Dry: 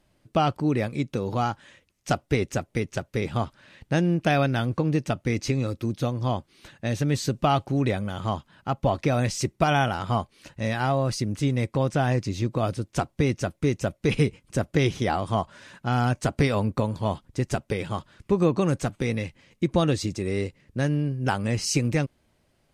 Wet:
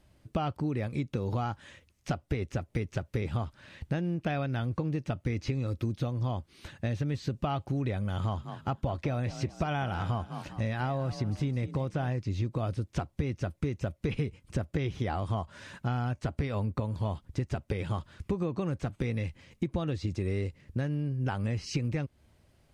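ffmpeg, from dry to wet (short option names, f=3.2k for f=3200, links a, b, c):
-filter_complex "[0:a]asettb=1/sr,asplit=3[a][b][c];[a]atrim=end=8.044[d];[b]atrim=start=8.04:end=12.1,asetpts=PTS-STARTPTS,afade=t=in:d=0.004:c=qsin,afade=t=out:st=4.056:d=0.004:c=qsin,asplit=4[e][f][g][h];[f]adelay=202,afreqshift=32,volume=-15dB[i];[g]adelay=404,afreqshift=64,volume=-23.9dB[j];[h]adelay=606,afreqshift=96,volume=-32.7dB[k];[e][i][j][k]amix=inputs=4:normalize=0,atrim=end_sample=179046[l];[c]atrim=start=12.096[m];[d][l]acrossfade=d=0.004:c1=hsin:c2=qsin[n];[n][m]acrossfade=d=0.004:c1=qsin:c2=hsin,acrossover=split=4300[o][p];[p]acompressor=threshold=-53dB:ratio=4:attack=1:release=60[q];[o][q]amix=inputs=2:normalize=0,equalizer=f=74:w=1.1:g=10,acompressor=threshold=-28dB:ratio=6"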